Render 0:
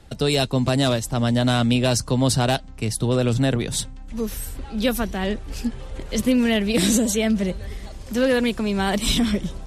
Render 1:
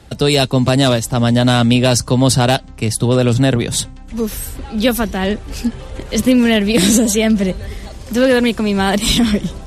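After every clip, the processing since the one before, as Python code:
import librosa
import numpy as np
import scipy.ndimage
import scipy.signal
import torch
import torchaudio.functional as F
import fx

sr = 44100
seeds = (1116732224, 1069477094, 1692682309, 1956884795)

y = scipy.signal.sosfilt(scipy.signal.butter(2, 43.0, 'highpass', fs=sr, output='sos'), x)
y = F.gain(torch.from_numpy(y), 7.0).numpy()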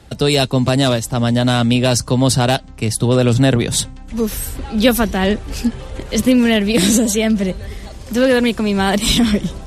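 y = fx.rider(x, sr, range_db=3, speed_s=2.0)
y = F.gain(torch.from_numpy(y), -1.0).numpy()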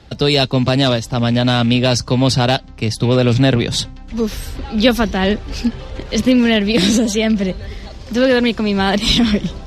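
y = fx.rattle_buzz(x, sr, strikes_db=-14.0, level_db=-24.0)
y = fx.high_shelf_res(y, sr, hz=6800.0, db=-10.5, q=1.5)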